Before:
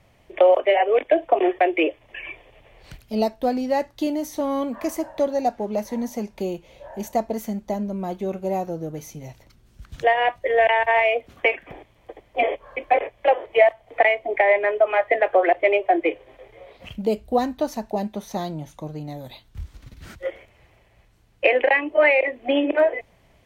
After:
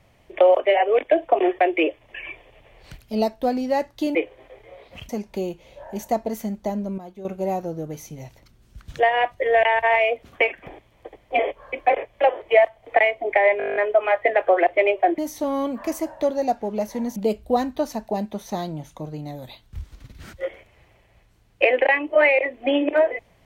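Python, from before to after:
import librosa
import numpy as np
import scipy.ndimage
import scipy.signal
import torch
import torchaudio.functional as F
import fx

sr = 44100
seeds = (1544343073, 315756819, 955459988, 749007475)

y = fx.edit(x, sr, fx.swap(start_s=4.15, length_s=1.98, other_s=16.04, other_length_s=0.94),
    fx.clip_gain(start_s=8.02, length_s=0.27, db=-11.0),
    fx.stutter(start_s=14.62, slice_s=0.02, count=10), tone=tone)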